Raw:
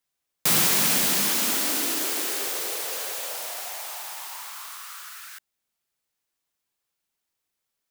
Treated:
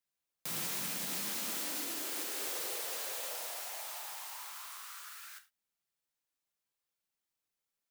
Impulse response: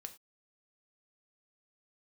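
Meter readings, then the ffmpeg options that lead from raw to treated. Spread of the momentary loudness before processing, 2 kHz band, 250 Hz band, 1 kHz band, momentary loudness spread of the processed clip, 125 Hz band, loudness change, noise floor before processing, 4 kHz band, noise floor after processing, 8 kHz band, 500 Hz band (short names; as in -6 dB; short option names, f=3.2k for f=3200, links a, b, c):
19 LU, -13.0 dB, -14.5 dB, -12.0 dB, 11 LU, under -15 dB, -14.5 dB, -82 dBFS, -13.5 dB, under -85 dBFS, -13.5 dB, -11.5 dB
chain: -filter_complex "[0:a]alimiter=limit=-19.5dB:level=0:latency=1:release=336[a];[1:a]atrim=start_sample=2205[b];[a][b]afir=irnorm=-1:irlink=0,volume=-3dB"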